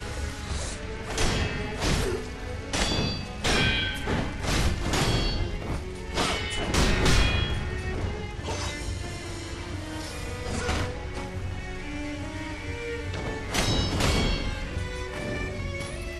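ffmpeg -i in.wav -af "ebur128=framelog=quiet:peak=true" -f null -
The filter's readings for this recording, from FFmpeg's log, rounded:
Integrated loudness:
  I:         -28.8 LUFS
  Threshold: -38.8 LUFS
Loudness range:
  LRA:         6.7 LU
  Threshold: -48.6 LUFS
  LRA low:   -33.2 LUFS
  LRA high:  -26.5 LUFS
True peak:
  Peak:      -10.5 dBFS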